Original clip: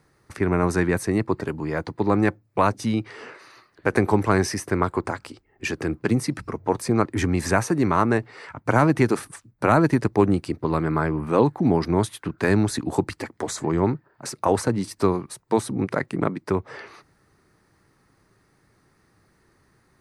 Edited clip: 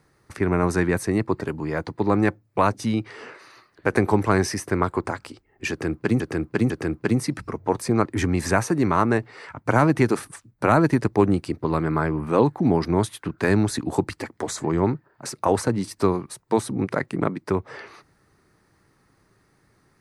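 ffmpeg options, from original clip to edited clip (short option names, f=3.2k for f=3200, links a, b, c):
-filter_complex "[0:a]asplit=3[a][b][c];[a]atrim=end=6.202[d];[b]atrim=start=5.698:end=6.202[e];[c]atrim=start=5.698[f];[d][e]acrossfade=d=0.004:c1=hsin:c2=hsin[g];[g][f]acrossfade=d=0.004:c1=hsin:c2=hsin"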